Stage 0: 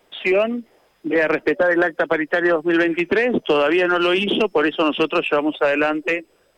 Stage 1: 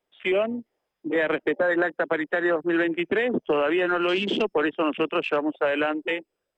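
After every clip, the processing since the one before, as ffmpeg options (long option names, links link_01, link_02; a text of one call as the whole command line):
ffmpeg -i in.wav -af "afwtdn=0.0398,volume=-5.5dB" out.wav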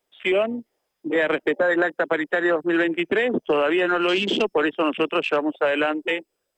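ffmpeg -i in.wav -af "bass=frequency=250:gain=-2,treble=frequency=4000:gain=7,volume=2.5dB" out.wav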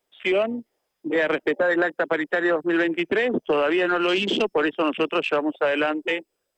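ffmpeg -i in.wav -af "acontrast=71,volume=-7dB" out.wav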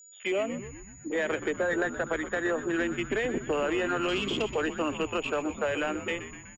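ffmpeg -i in.wav -filter_complex "[0:a]aeval=exprs='val(0)+0.00708*sin(2*PI*6900*n/s)':channel_layout=same,asplit=9[link_01][link_02][link_03][link_04][link_05][link_06][link_07][link_08][link_09];[link_02]adelay=124,afreqshift=-100,volume=-11.5dB[link_10];[link_03]adelay=248,afreqshift=-200,volume=-15.5dB[link_11];[link_04]adelay=372,afreqshift=-300,volume=-19.5dB[link_12];[link_05]adelay=496,afreqshift=-400,volume=-23.5dB[link_13];[link_06]adelay=620,afreqshift=-500,volume=-27.6dB[link_14];[link_07]adelay=744,afreqshift=-600,volume=-31.6dB[link_15];[link_08]adelay=868,afreqshift=-700,volume=-35.6dB[link_16];[link_09]adelay=992,afreqshift=-800,volume=-39.6dB[link_17];[link_01][link_10][link_11][link_12][link_13][link_14][link_15][link_16][link_17]amix=inputs=9:normalize=0,volume=-7.5dB" out.wav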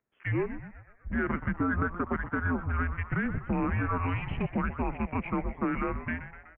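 ffmpeg -i in.wav -af "highpass=frequency=250:width_type=q:width=0.5412,highpass=frequency=250:width_type=q:width=1.307,lowpass=frequency=2400:width_type=q:width=0.5176,lowpass=frequency=2400:width_type=q:width=0.7071,lowpass=frequency=2400:width_type=q:width=1.932,afreqshift=-260" out.wav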